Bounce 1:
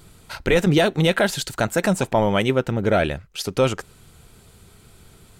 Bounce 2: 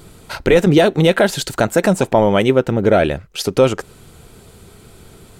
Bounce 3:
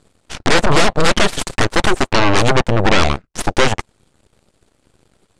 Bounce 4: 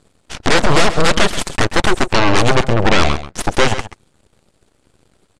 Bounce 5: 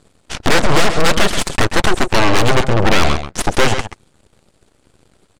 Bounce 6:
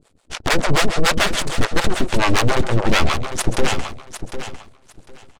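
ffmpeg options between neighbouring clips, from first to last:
ffmpeg -i in.wav -filter_complex "[0:a]equalizer=frequency=410:width=0.63:gain=5.5,asplit=2[link_01][link_02];[link_02]acompressor=threshold=-22dB:ratio=6,volume=-2dB[link_03];[link_01][link_03]amix=inputs=2:normalize=0" out.wav
ffmpeg -i in.wav -af "aeval=exprs='0.841*(cos(1*acos(clip(val(0)/0.841,-1,1)))-cos(1*PI/2))+0.299*(cos(3*acos(clip(val(0)/0.841,-1,1)))-cos(3*PI/2))+0.335*(cos(8*acos(clip(val(0)/0.841,-1,1)))-cos(8*PI/2))':channel_layout=same,lowpass=frequency=9800:width=0.5412,lowpass=frequency=9800:width=1.3066,volume=-1.5dB" out.wav
ffmpeg -i in.wav -af "aecho=1:1:133:0.224" out.wav
ffmpeg -i in.wav -af "aeval=exprs='(tanh(3.98*val(0)+0.45)-tanh(0.45))/3.98':channel_layout=same,volume=4dB" out.wav
ffmpeg -i in.wav -filter_complex "[0:a]acrossover=split=490[link_01][link_02];[link_01]aeval=exprs='val(0)*(1-1/2+1/2*cos(2*PI*6.9*n/s))':channel_layout=same[link_03];[link_02]aeval=exprs='val(0)*(1-1/2-1/2*cos(2*PI*6.9*n/s))':channel_layout=same[link_04];[link_03][link_04]amix=inputs=2:normalize=0,aecho=1:1:752|1504|2256:0.299|0.0567|0.0108" out.wav

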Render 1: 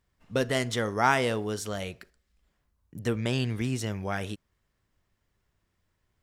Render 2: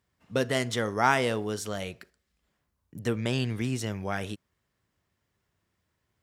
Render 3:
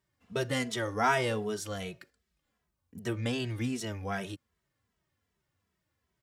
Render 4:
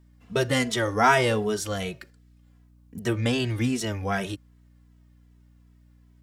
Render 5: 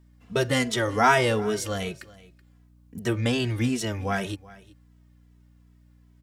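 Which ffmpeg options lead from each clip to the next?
ffmpeg -i in.wav -af "highpass=80" out.wav
ffmpeg -i in.wav -filter_complex "[0:a]asplit=2[link_01][link_02];[link_02]adelay=2.7,afreqshift=-2.6[link_03];[link_01][link_03]amix=inputs=2:normalize=1" out.wav
ffmpeg -i in.wav -af "aeval=exprs='val(0)+0.000794*(sin(2*PI*60*n/s)+sin(2*PI*2*60*n/s)/2+sin(2*PI*3*60*n/s)/3+sin(2*PI*4*60*n/s)/4+sin(2*PI*5*60*n/s)/5)':channel_layout=same,volume=7.5dB" out.wav
ffmpeg -i in.wav -af "aecho=1:1:377:0.0891" out.wav

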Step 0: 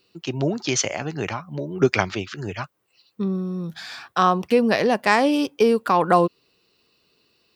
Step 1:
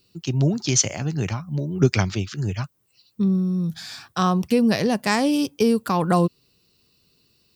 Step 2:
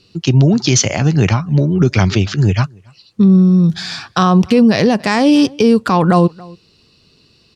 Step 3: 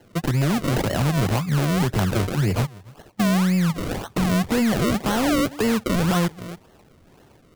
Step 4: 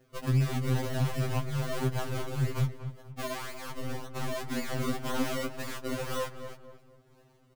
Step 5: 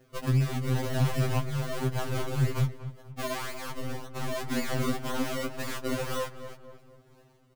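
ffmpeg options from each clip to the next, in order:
ffmpeg -i in.wav -af "bass=frequency=250:gain=15,treble=frequency=4000:gain=12,volume=-5.5dB" out.wav
ffmpeg -i in.wav -filter_complex "[0:a]lowpass=5500,asplit=2[link_01][link_02];[link_02]adelay=279.9,volume=-29dB,highshelf=frequency=4000:gain=-6.3[link_03];[link_01][link_03]amix=inputs=2:normalize=0,alimiter=level_in=15dB:limit=-1dB:release=50:level=0:latency=1,volume=-2dB" out.wav
ffmpeg -i in.wav -filter_complex "[0:a]acrossover=split=170|770|4700[link_01][link_02][link_03][link_04];[link_01]acompressor=threshold=-22dB:ratio=4[link_05];[link_02]acompressor=threshold=-21dB:ratio=4[link_06];[link_03]acompressor=threshold=-20dB:ratio=4[link_07];[link_04]acompressor=threshold=-34dB:ratio=4[link_08];[link_05][link_06][link_07][link_08]amix=inputs=4:normalize=0,aresample=16000,asoftclip=type=tanh:threshold=-15dB,aresample=44100,acrusher=samples=36:mix=1:aa=0.000001:lfo=1:lforange=36:lforate=1.9" out.wav
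ffmpeg -i in.wav -filter_complex "[0:a]aeval=exprs='0.2*(cos(1*acos(clip(val(0)/0.2,-1,1)))-cos(1*PI/2))+0.0178*(cos(8*acos(clip(val(0)/0.2,-1,1)))-cos(8*PI/2))':channel_layout=same,asplit=2[link_01][link_02];[link_02]adelay=240,lowpass=frequency=1700:poles=1,volume=-10.5dB,asplit=2[link_03][link_04];[link_04]adelay=240,lowpass=frequency=1700:poles=1,volume=0.39,asplit=2[link_05][link_06];[link_06]adelay=240,lowpass=frequency=1700:poles=1,volume=0.39,asplit=2[link_07][link_08];[link_08]adelay=240,lowpass=frequency=1700:poles=1,volume=0.39[link_09];[link_01][link_03][link_05][link_07][link_09]amix=inputs=5:normalize=0,afftfilt=real='re*2.45*eq(mod(b,6),0)':imag='im*2.45*eq(mod(b,6),0)':win_size=2048:overlap=0.75,volume=-8.5dB" out.wav
ffmpeg -i in.wav -af "tremolo=f=0.86:d=0.35,volume=3.5dB" out.wav

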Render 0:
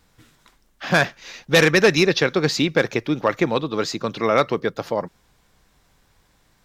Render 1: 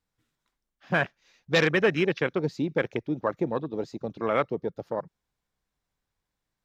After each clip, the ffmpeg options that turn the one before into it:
ffmpeg -i in.wav -af "afwtdn=0.0794,volume=-7dB" out.wav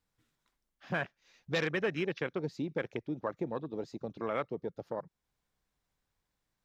ffmpeg -i in.wav -af "acompressor=threshold=-46dB:ratio=1.5" out.wav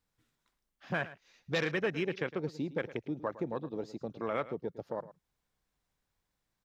ffmpeg -i in.wav -af "aecho=1:1:110:0.158" out.wav

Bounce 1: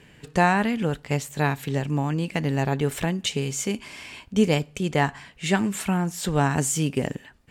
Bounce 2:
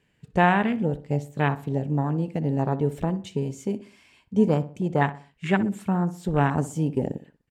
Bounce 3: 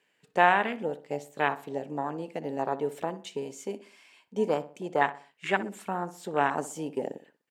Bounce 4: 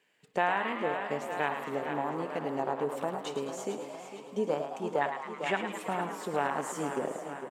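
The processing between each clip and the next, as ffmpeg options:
ffmpeg -i in.wav -filter_complex "[0:a]afwtdn=0.0447,asplit=2[link_01][link_02];[link_02]adelay=62,lowpass=frequency=1800:poles=1,volume=-14dB,asplit=2[link_03][link_04];[link_04]adelay=62,lowpass=frequency=1800:poles=1,volume=0.4,asplit=2[link_05][link_06];[link_06]adelay=62,lowpass=frequency=1800:poles=1,volume=0.4,asplit=2[link_07][link_08];[link_08]adelay=62,lowpass=frequency=1800:poles=1,volume=0.4[link_09];[link_01][link_03][link_05][link_07][link_09]amix=inputs=5:normalize=0" out.wav
ffmpeg -i in.wav -af "highpass=450" out.wav
ffmpeg -i in.wav -filter_complex "[0:a]asplit=2[link_01][link_02];[link_02]aecho=0:1:453|906|1359|1812|2265:0.251|0.128|0.0653|0.0333|0.017[link_03];[link_01][link_03]amix=inputs=2:normalize=0,acompressor=threshold=-29dB:ratio=2,asplit=2[link_04][link_05];[link_05]asplit=8[link_06][link_07][link_08][link_09][link_10][link_11][link_12][link_13];[link_06]adelay=108,afreqshift=110,volume=-8.5dB[link_14];[link_07]adelay=216,afreqshift=220,volume=-12.9dB[link_15];[link_08]adelay=324,afreqshift=330,volume=-17.4dB[link_16];[link_09]adelay=432,afreqshift=440,volume=-21.8dB[link_17];[link_10]adelay=540,afreqshift=550,volume=-26.2dB[link_18];[link_11]adelay=648,afreqshift=660,volume=-30.7dB[link_19];[link_12]adelay=756,afreqshift=770,volume=-35.1dB[link_20];[link_13]adelay=864,afreqshift=880,volume=-39.6dB[link_21];[link_14][link_15][link_16][link_17][link_18][link_19][link_20][link_21]amix=inputs=8:normalize=0[link_22];[link_04][link_22]amix=inputs=2:normalize=0" out.wav

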